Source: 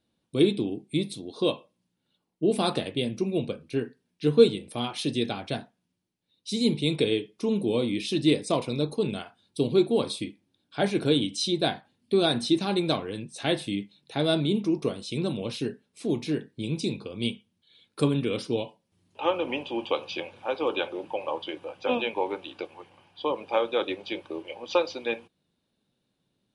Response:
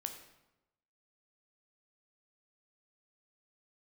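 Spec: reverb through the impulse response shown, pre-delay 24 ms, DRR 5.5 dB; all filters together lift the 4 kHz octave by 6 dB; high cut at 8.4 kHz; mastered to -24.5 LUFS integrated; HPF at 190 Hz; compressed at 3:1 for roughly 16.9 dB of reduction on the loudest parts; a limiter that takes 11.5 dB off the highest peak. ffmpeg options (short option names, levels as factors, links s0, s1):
-filter_complex "[0:a]highpass=190,lowpass=8400,equalizer=f=4000:t=o:g=7,acompressor=threshold=0.0178:ratio=3,alimiter=level_in=2:limit=0.0631:level=0:latency=1,volume=0.501,asplit=2[s0][s1];[1:a]atrim=start_sample=2205,adelay=24[s2];[s1][s2]afir=irnorm=-1:irlink=0,volume=0.631[s3];[s0][s3]amix=inputs=2:normalize=0,volume=5.62"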